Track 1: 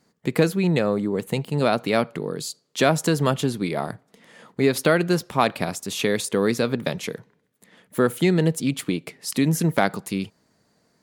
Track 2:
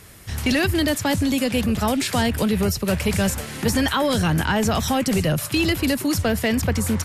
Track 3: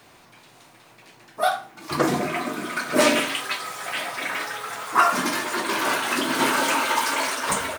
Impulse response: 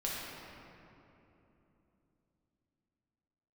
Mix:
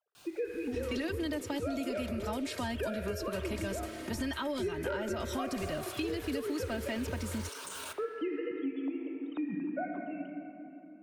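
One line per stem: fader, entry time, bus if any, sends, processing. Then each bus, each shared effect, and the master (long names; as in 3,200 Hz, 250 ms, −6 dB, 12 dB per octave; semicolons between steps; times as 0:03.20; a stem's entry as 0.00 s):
−4.5 dB, 0.00 s, bus A, send −12.5 dB, three sine waves on the formant tracks; expander for the loud parts 1.5 to 1, over −27 dBFS
−13.5 dB, 0.45 s, no bus, no send, high-shelf EQ 5,900 Hz −6.5 dB; comb filter 3.2 ms
0:05.21 −22.5 dB → 0:05.63 −11 dB, 0.15 s, bus A, send −15 dB, shaped tremolo saw up 6.5 Hz, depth 70%; guitar amp tone stack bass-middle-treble 5-5-5; envelope flattener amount 100%; automatic ducking −17 dB, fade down 0.45 s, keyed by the first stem
bus A: 0.0 dB, Butterworth band-reject 2,000 Hz, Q 2.9; downward compressor 2 to 1, threshold −42 dBFS, peak gain reduction 15 dB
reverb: on, RT60 3.2 s, pre-delay 6 ms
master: downward compressor, threshold −31 dBFS, peak gain reduction 9 dB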